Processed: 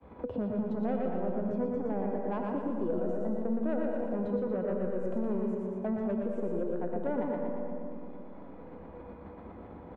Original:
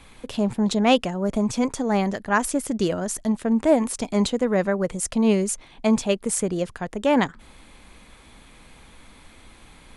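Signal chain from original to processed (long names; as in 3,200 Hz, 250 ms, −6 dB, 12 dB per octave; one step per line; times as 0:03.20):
Chebyshev low-pass filter 650 Hz, order 2
downward expander −42 dBFS
high-pass filter 63 Hz 24 dB per octave
parametric band 130 Hz −9 dB 0.44 octaves
in parallel at +3 dB: downward compressor, threshold −33 dBFS, peak gain reduction 18.5 dB
on the sum: soft clipping −14 dBFS, distortion −17 dB
tuned comb filter 490 Hz, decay 0.47 s, mix 80%
repeating echo 118 ms, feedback 52%, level −4 dB
on a send at −3.5 dB: convolution reverb RT60 1.6 s, pre-delay 50 ms
on the sum: multiband upward and downward compressor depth 70%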